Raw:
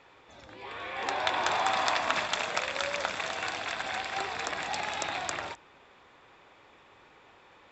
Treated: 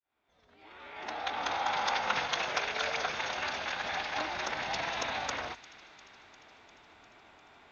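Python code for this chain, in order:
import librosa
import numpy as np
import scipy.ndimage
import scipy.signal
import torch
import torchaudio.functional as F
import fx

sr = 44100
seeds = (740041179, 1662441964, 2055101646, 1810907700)

y = fx.fade_in_head(x, sr, length_s=2.37)
y = fx.pitch_keep_formants(y, sr, semitones=-4.0)
y = fx.echo_wet_highpass(y, sr, ms=350, feedback_pct=70, hz=1600.0, wet_db=-18.0)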